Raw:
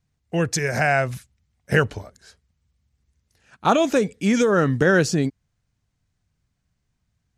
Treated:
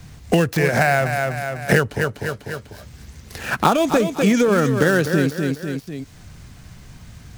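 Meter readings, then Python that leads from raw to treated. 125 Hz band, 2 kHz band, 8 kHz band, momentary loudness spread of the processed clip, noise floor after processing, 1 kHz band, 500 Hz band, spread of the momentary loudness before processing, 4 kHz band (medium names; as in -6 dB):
+3.5 dB, +3.0 dB, 0.0 dB, 16 LU, -44 dBFS, +3.0 dB, +2.5 dB, 10 LU, +3.0 dB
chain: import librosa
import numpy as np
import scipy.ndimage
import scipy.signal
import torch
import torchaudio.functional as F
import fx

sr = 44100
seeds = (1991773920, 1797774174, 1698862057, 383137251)

p1 = fx.dead_time(x, sr, dead_ms=0.071)
p2 = p1 + fx.echo_feedback(p1, sr, ms=248, feedback_pct=25, wet_db=-9.5, dry=0)
p3 = fx.band_squash(p2, sr, depth_pct=100)
y = p3 * 10.0 ** (2.0 / 20.0)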